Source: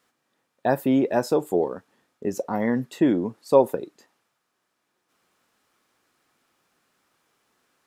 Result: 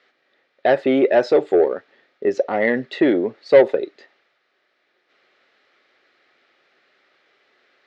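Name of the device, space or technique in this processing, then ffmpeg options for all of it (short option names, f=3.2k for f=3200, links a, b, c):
overdrive pedal into a guitar cabinet: -filter_complex "[0:a]asplit=2[a][b];[b]highpass=f=720:p=1,volume=18dB,asoftclip=type=tanh:threshold=-3.5dB[c];[a][c]amix=inputs=2:normalize=0,lowpass=f=5.8k:p=1,volume=-6dB,highpass=80,equalizer=f=190:t=q:w=4:g=-4,equalizer=f=390:t=q:w=4:g=7,equalizer=f=580:t=q:w=4:g=6,equalizer=f=990:t=q:w=4:g=-10,equalizer=f=2k:t=q:w=4:g=7,equalizer=f=4k:t=q:w=4:g=3,lowpass=f=4.5k:w=0.5412,lowpass=f=4.5k:w=1.3066,volume=-3dB"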